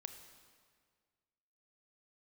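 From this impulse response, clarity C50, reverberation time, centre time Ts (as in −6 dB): 8.0 dB, 1.8 s, 25 ms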